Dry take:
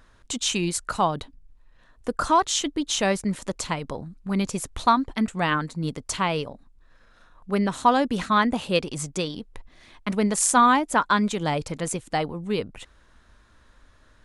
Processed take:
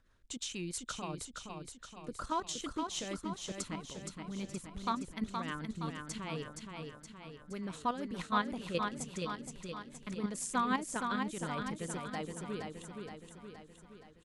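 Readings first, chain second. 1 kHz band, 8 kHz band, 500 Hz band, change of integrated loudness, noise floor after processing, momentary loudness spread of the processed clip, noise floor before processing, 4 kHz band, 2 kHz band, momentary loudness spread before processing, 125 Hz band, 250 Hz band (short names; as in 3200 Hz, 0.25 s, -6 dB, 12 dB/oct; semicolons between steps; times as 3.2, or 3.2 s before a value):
-15.0 dB, -14.0 dB, -14.5 dB, -14.5 dB, -58 dBFS, 14 LU, -57 dBFS, -13.5 dB, -13.5 dB, 10 LU, -12.5 dB, -13.0 dB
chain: bell 720 Hz -3 dB 0.74 oct; level quantiser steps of 10 dB; rotary speaker horn 6.3 Hz; on a send: feedback echo 0.47 s, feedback 56%, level -5 dB; on the sum: gain -8 dB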